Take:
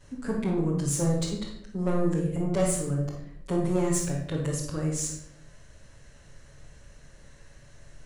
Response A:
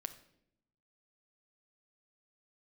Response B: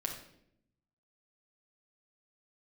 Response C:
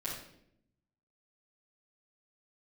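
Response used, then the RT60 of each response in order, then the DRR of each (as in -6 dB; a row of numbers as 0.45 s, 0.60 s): C; 0.75 s, 0.70 s, 0.70 s; 8.5 dB, -0.5 dB, -10.5 dB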